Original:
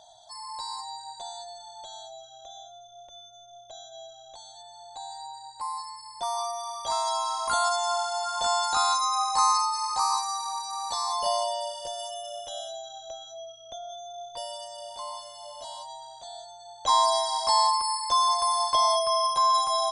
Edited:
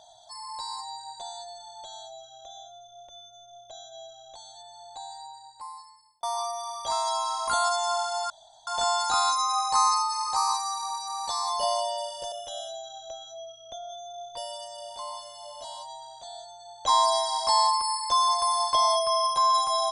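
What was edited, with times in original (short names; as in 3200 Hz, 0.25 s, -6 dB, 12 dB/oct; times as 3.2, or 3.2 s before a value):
4.91–6.23 fade out
8.3 insert room tone 0.37 s
11.95–12.32 cut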